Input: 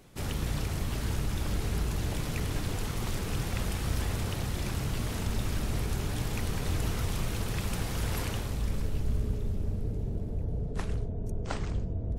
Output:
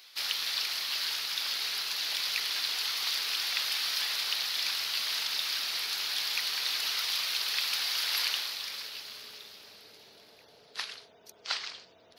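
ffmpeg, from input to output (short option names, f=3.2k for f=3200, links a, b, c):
-af "highpass=1.4k,highshelf=f=6k:t=q:w=3:g=-10.5,crystalizer=i=3:c=0,volume=3.5dB"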